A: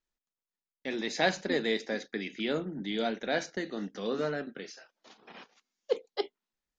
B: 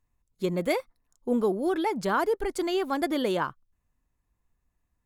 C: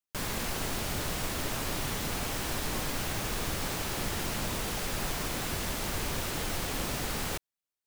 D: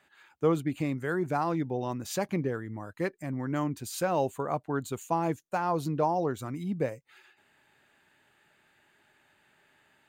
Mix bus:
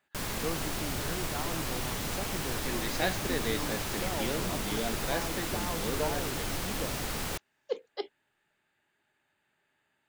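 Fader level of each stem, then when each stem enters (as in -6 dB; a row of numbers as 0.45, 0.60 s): -4.0 dB, off, -1.0 dB, -10.5 dB; 1.80 s, off, 0.00 s, 0.00 s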